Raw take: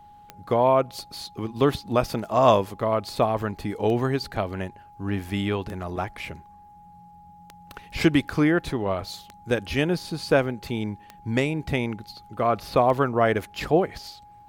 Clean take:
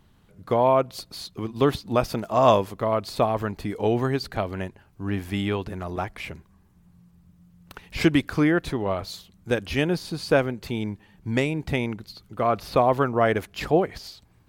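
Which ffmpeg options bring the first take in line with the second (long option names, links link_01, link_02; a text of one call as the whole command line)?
ffmpeg -i in.wav -af "adeclick=threshold=4,bandreject=frequency=830:width=30" out.wav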